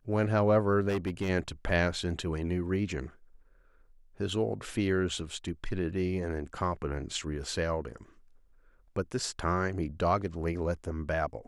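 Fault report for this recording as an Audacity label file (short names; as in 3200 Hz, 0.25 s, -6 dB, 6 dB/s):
0.880000	1.300000	clipped -26.5 dBFS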